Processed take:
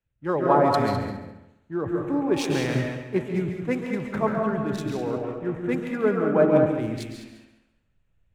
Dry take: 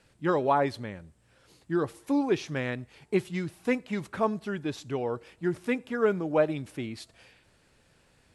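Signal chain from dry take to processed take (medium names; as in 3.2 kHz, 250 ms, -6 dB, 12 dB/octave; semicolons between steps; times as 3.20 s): local Wiener filter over 9 samples; in parallel at -2 dB: compressor with a negative ratio -37 dBFS, ratio -1; on the sum: dynamic bell 3.1 kHz, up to -5 dB, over -46 dBFS, Q 0.85; multi-head delay 69 ms, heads second and third, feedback 44%, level -8 dB; on a send at -2 dB: reverberation RT60 1.0 s, pre-delay 110 ms; on the sum: three bands expanded up and down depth 100%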